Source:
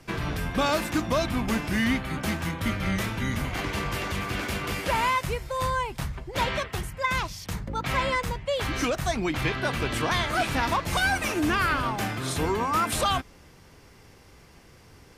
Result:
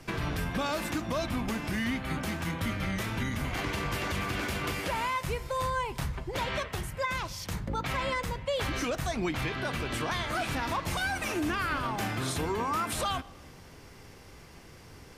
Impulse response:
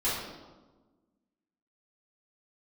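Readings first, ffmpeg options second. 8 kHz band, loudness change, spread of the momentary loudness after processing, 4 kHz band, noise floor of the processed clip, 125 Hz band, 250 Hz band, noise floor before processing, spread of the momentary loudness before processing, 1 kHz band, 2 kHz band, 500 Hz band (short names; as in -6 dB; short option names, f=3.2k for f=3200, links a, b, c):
-4.0 dB, -5.0 dB, 19 LU, -5.0 dB, -51 dBFS, -3.5 dB, -4.5 dB, -53 dBFS, 6 LU, -5.5 dB, -5.0 dB, -4.5 dB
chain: -filter_complex "[0:a]alimiter=limit=-24dB:level=0:latency=1:release=264,asplit=2[a][b];[1:a]atrim=start_sample=2205,asetrate=36603,aresample=44100[c];[b][c]afir=irnorm=-1:irlink=0,volume=-27.5dB[d];[a][d]amix=inputs=2:normalize=0,volume=1.5dB"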